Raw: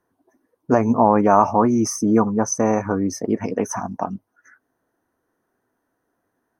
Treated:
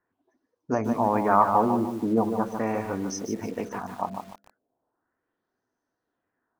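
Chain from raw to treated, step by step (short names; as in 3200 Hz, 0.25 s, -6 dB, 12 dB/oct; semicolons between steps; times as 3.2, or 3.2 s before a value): de-hum 67.94 Hz, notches 10; LFO low-pass sine 0.39 Hz 560–5800 Hz; lo-fi delay 0.149 s, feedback 35%, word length 6-bit, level -6.5 dB; gain -9 dB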